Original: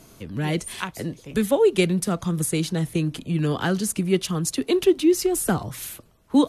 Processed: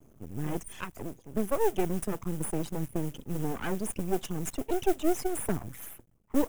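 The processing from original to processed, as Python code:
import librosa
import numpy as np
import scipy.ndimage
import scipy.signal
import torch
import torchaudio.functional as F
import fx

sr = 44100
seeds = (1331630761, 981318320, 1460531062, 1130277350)

y = fx.envelope_sharpen(x, sr, power=2.0)
y = fx.mod_noise(y, sr, seeds[0], snr_db=18)
y = np.maximum(y, 0.0)
y = fx.peak_eq(y, sr, hz=4300.0, db=-11.0, octaves=0.56)
y = F.gain(torch.from_numpy(y), -4.5).numpy()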